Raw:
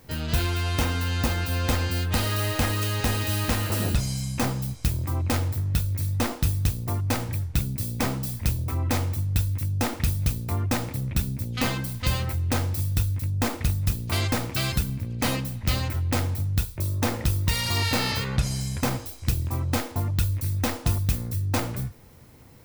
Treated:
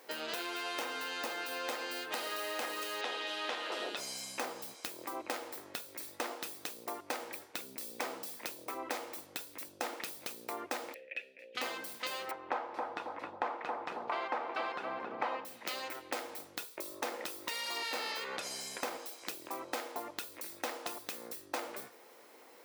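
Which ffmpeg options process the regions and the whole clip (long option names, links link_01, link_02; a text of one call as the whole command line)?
ffmpeg -i in.wav -filter_complex "[0:a]asettb=1/sr,asplit=3[link_01][link_02][link_03];[link_01]atrim=end=3.014[link_04];[link_02]atrim=start=3.01:end=3.97,asetpts=PTS-STARTPTS,afade=type=in:duration=0.004:curve=qsin,afade=type=out:start_time=0.956:duration=0.004:curve=qsin,highpass=280,lowpass=4700,equalizer=frequency=3400:width_type=o:width=0.32:gain=8[link_05];[link_03]atrim=start=3.966[link_06];[link_04][link_05]acrossfade=duration=0.004:curve1=hsin:curve2=qsin[link_07];[link_07][link_06]acrossfade=duration=0.004:curve1=qsin:curve2=hsin,asettb=1/sr,asplit=3[link_08][link_09][link_10];[link_08]atrim=end=10.944[link_11];[link_09]atrim=start=10.94:end=11.55,asetpts=PTS-STARTPTS,afade=type=in:duration=0.004:curve=qsin,afade=type=out:start_time=0.606:duration=0.004:curve=qsin,asplit=3[link_12][link_13][link_14];[link_12]bandpass=frequency=530:width_type=q:width=8,volume=0dB[link_15];[link_13]bandpass=frequency=1840:width_type=q:width=8,volume=-6dB[link_16];[link_14]bandpass=frequency=2480:width_type=q:width=8,volume=-9dB[link_17];[link_15][link_16][link_17]amix=inputs=3:normalize=0,equalizer=frequency=2400:width_type=o:width=0.82:gain=15[link_18];[link_10]atrim=start=11.546[link_19];[link_11][link_18]acrossfade=duration=0.004:curve1=hsin:curve2=qsin[link_20];[link_20][link_19]acrossfade=duration=0.004:curve1=qsin:curve2=hsin,asettb=1/sr,asplit=3[link_21][link_22][link_23];[link_21]atrim=end=12.314[link_24];[link_22]atrim=start=12.31:end=15.45,asetpts=PTS-STARTPTS,afade=type=in:duration=0.004:curve=qsin,afade=type=out:start_time=3.136:duration=0.004:curve=qsin,lowpass=2500,equalizer=frequency=940:width_type=o:width=1.3:gain=11.5,asplit=2[link_25][link_26];[link_26]adelay=271,lowpass=frequency=1200:poles=1,volume=-6dB,asplit=2[link_27][link_28];[link_28]adelay=271,lowpass=frequency=1200:poles=1,volume=0.35,asplit=2[link_29][link_30];[link_30]adelay=271,lowpass=frequency=1200:poles=1,volume=0.35,asplit=2[link_31][link_32];[link_32]adelay=271,lowpass=frequency=1200:poles=1,volume=0.35[link_33];[link_25][link_27][link_29][link_31][link_33]amix=inputs=5:normalize=0,atrim=end_sample=138474[link_34];[link_23]atrim=start=15.446[link_35];[link_24][link_34]acrossfade=duration=0.004:curve1=hsin:curve2=qsin[link_36];[link_36][link_35]acrossfade=duration=0.004:curve1=qsin:curve2=hsin,highpass=frequency=380:width=0.5412,highpass=frequency=380:width=1.3066,acompressor=threshold=-36dB:ratio=4,highshelf=frequency=4900:gain=-6,volume=1dB" out.wav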